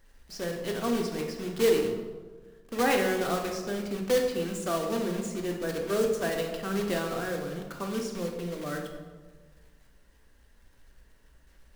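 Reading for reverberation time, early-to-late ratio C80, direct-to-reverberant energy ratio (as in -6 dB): 1.4 s, 7.5 dB, 1.5 dB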